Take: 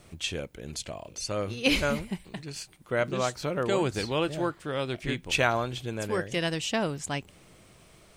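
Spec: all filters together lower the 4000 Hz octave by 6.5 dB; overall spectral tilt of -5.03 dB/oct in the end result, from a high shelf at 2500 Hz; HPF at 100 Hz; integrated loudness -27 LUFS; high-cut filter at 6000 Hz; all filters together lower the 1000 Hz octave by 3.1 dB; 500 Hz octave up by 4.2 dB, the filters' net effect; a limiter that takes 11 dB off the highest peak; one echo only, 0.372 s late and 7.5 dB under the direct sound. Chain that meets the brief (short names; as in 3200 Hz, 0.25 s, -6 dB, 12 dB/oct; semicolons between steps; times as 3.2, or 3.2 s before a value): HPF 100 Hz; LPF 6000 Hz; bell 500 Hz +7 dB; bell 1000 Hz -6.5 dB; high shelf 2500 Hz -4 dB; bell 4000 Hz -4.5 dB; limiter -19 dBFS; echo 0.372 s -7.5 dB; gain +3 dB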